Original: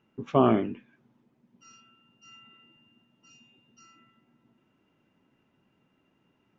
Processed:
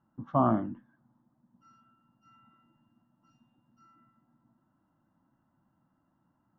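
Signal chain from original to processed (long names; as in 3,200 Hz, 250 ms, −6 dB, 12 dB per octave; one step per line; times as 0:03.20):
low-pass filter 1,900 Hz 12 dB per octave
parametric band 330 Hz +5.5 dB 0.52 octaves
phaser with its sweep stopped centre 1,000 Hz, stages 4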